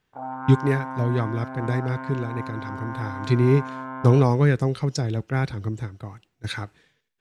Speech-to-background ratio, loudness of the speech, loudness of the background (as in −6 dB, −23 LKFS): 10.0 dB, −24.0 LKFS, −34.0 LKFS